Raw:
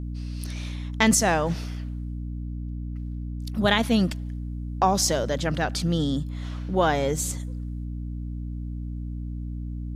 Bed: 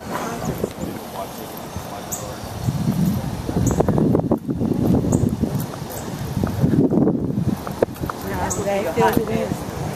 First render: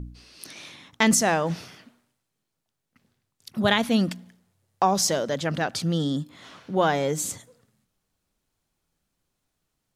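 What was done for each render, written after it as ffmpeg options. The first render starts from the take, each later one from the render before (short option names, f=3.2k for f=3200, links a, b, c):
-af "bandreject=f=60:t=h:w=4,bandreject=f=120:t=h:w=4,bandreject=f=180:t=h:w=4,bandreject=f=240:t=h:w=4,bandreject=f=300:t=h:w=4"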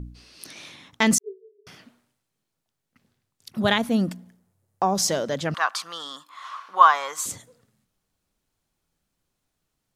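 -filter_complex "[0:a]asettb=1/sr,asplit=3[a][b][c];[a]atrim=end=1.184[d];[b]atrim=start=1.18:end=1.67,asetpts=PTS-STARTPTS,afade=t=in:d=0.004:c=qsin,afade=t=out:st=0.486:d=0.004:c=qsin,asuperpass=centerf=410:order=20:qfactor=6.5[e];[c]atrim=start=1.666[f];[d][e]acrossfade=d=0.004:c1=hsin:c2=qsin[g];[g][f]acrossfade=d=0.004:c1=qsin:c2=hsin,asettb=1/sr,asplit=3[h][i][j];[h]atrim=end=3.784[k];[i]atrim=start=3.78:end=4.98,asetpts=PTS-STARTPTS,afade=t=in:d=0.004:c=qsin,afade=t=out:st=1.196:d=0.004:c=qsin,equalizer=f=3.3k:t=o:w=2.2:g=-8.5[l];[j]atrim=start=4.976[m];[k][l]acrossfade=d=0.004:c1=hsin:c2=qsin[n];[n][m]acrossfade=d=0.004:c1=qsin:c2=hsin,asettb=1/sr,asplit=3[o][p][q];[o]atrim=end=5.544[r];[p]atrim=start=5.54:end=7.26,asetpts=PTS-STARTPTS,afade=t=in:d=0.004:c=qsin,afade=t=out:st=1.716:d=0.004:c=qsin,highpass=f=1.1k:t=q:w=10[s];[q]atrim=start=7.256[t];[r][s]acrossfade=d=0.004:c1=hsin:c2=qsin[u];[u][t]acrossfade=d=0.004:c1=qsin:c2=hsin"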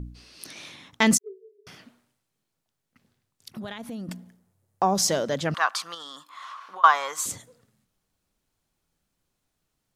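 -filter_complex "[0:a]asettb=1/sr,asplit=3[a][b][c];[a]atrim=end=1.174[d];[b]atrim=start=1.17:end=4.09,asetpts=PTS-STARTPTS,afade=t=in:d=0.004:c=qsin,afade=t=out:st=2.916:d=0.004:c=qsin,acompressor=threshold=-34dB:ratio=6:attack=3.2:release=140:knee=1:detection=peak[e];[c]atrim=start=4.086[f];[d][e]acrossfade=d=0.004:c1=hsin:c2=qsin[g];[g][f]acrossfade=d=0.004:c1=qsin:c2=hsin,asettb=1/sr,asplit=3[h][i][j];[h]atrim=end=5.944[k];[i]atrim=start=5.94:end=6.84,asetpts=PTS-STARTPTS,afade=t=in:d=0.004:c=qsin,afade=t=out:st=0.896:d=0.004:c=qsin,acompressor=threshold=-36dB:ratio=6:attack=3.2:release=140:knee=1:detection=peak[l];[j]atrim=start=6.836[m];[k][l]acrossfade=d=0.004:c1=hsin:c2=qsin[n];[n][m]acrossfade=d=0.004:c1=qsin:c2=hsin"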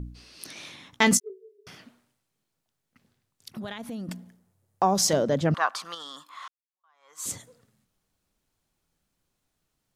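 -filter_complex "[0:a]asettb=1/sr,asplit=3[a][b][c];[a]atrim=end=0.904[d];[b]atrim=start=0.9:end=1.3,asetpts=PTS-STARTPTS,afade=t=in:d=0.004:c=qsin,afade=t=out:st=0.396:d=0.004:c=qsin,asplit=2[e][f];[f]adelay=16,volume=-9dB[g];[e][g]amix=inputs=2:normalize=0,atrim=end_sample=17640[h];[c]atrim=start=1.296[i];[d][h]acrossfade=d=0.004:c1=hsin:c2=qsin[j];[j][i]acrossfade=d=0.004:c1=qsin:c2=hsin,asettb=1/sr,asplit=3[k][l][m];[k]atrim=end=5.134[n];[l]atrim=start=5.13:end=5.85,asetpts=PTS-STARTPTS,afade=t=in:d=0.004:c=qsin,afade=t=out:st=0.716:d=0.004:c=qsin,tiltshelf=f=880:g=6[o];[m]atrim=start=5.846[p];[n][o]acrossfade=d=0.004:c1=hsin:c2=qsin[q];[q][p]acrossfade=d=0.004:c1=qsin:c2=hsin,asplit=2[r][s];[r]atrim=end=6.48,asetpts=PTS-STARTPTS,afade=t=out:st=6.476:d=0.004:c=hsin[t];[s]atrim=start=6.48,asetpts=PTS-STARTPTS,afade=t=in:d=0.8:c=exp[u];[t][u]concat=n=2:v=0:a=1"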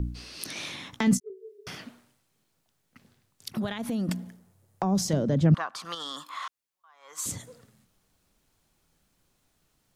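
-filter_complex "[0:a]asplit=2[a][b];[b]alimiter=limit=-14dB:level=0:latency=1:release=276,volume=2dB[c];[a][c]amix=inputs=2:normalize=0,acrossover=split=260[d][e];[e]acompressor=threshold=-32dB:ratio=4[f];[d][f]amix=inputs=2:normalize=0"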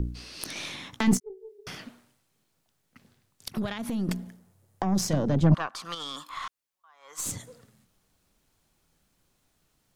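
-af "aeval=exprs='0.316*(cos(1*acos(clip(val(0)/0.316,-1,1)))-cos(1*PI/2))+0.0316*(cos(6*acos(clip(val(0)/0.316,-1,1)))-cos(6*PI/2))':c=same"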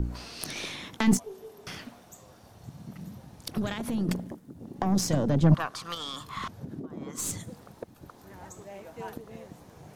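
-filter_complex "[1:a]volume=-23dB[a];[0:a][a]amix=inputs=2:normalize=0"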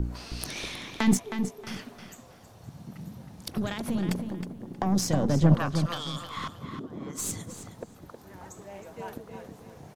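-filter_complex "[0:a]asplit=2[a][b];[b]adelay=316,lowpass=f=4.2k:p=1,volume=-7.5dB,asplit=2[c][d];[d]adelay=316,lowpass=f=4.2k:p=1,volume=0.27,asplit=2[e][f];[f]adelay=316,lowpass=f=4.2k:p=1,volume=0.27[g];[a][c][e][g]amix=inputs=4:normalize=0"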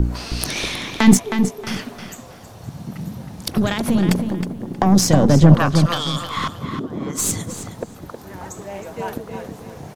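-af "volume=11.5dB,alimiter=limit=-1dB:level=0:latency=1"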